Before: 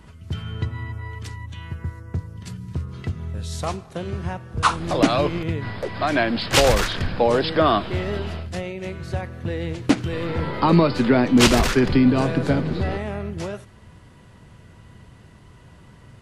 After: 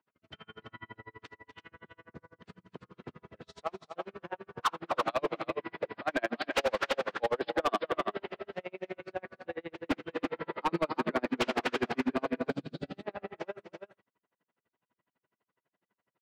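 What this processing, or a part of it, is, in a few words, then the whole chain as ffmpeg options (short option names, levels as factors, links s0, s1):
helicopter radio: -filter_complex "[0:a]agate=range=0.0891:threshold=0.00891:ratio=16:detection=peak,highpass=87,aecho=1:1:244|335:0.251|0.447,asettb=1/sr,asplit=3[s0][s1][s2];[s0]atrim=end=12.504[s3];[s1]atrim=start=12.5:end=13.03,asetpts=PTS-STARTPTS,afade=t=in:d=0.004:c=qsin,afade=t=out:st=0.526:d=0.004:c=qsin,equalizer=f=125:t=o:w=1:g=7,equalizer=f=500:t=o:w=1:g=-9,equalizer=f=1000:t=o:w=1:g=-11,equalizer=f=2000:t=o:w=1:g=-10,equalizer=f=4000:t=o:w=1:g=4,equalizer=f=8000:t=o:w=1:g=11[s4];[s2]atrim=start=13.026[s5];[s3][s4]acrossfade=d=0.004:c1=hsin:c2=qsin[s6];[s6][s5]acrossfade=d=0.004:c1=qsin:c2=hsin,highpass=360,lowpass=2600,aeval=exprs='val(0)*pow(10,-39*(0.5-0.5*cos(2*PI*12*n/s))/20)':c=same,asoftclip=type=hard:threshold=0.0891,volume=0.841"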